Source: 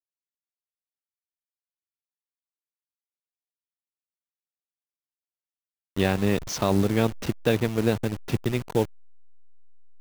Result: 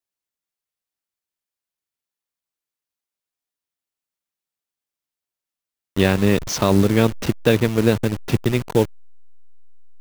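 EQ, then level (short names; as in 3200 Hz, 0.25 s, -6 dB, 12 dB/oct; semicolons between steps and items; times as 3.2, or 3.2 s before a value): dynamic EQ 750 Hz, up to -5 dB, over -41 dBFS, Q 4.4; +6.5 dB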